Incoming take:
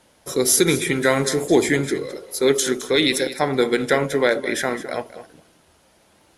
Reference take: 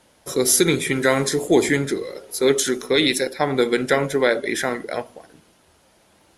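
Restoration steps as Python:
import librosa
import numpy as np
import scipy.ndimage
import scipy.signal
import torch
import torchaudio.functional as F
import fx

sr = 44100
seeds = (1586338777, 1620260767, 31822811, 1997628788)

y = fx.fix_declip(x, sr, threshold_db=-5.5)
y = fx.fix_echo_inverse(y, sr, delay_ms=213, level_db=-14.5)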